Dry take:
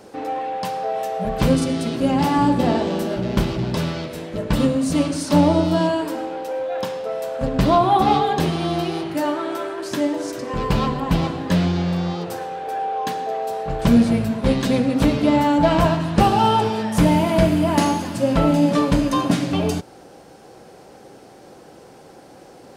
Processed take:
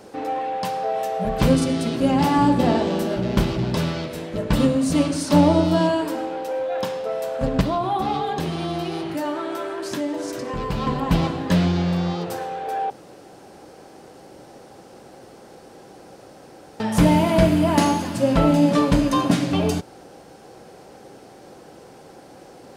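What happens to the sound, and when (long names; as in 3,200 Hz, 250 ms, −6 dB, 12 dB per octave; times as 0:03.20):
0:07.61–0:10.87: downward compressor 2 to 1, threshold −25 dBFS
0:12.90–0:16.80: fill with room tone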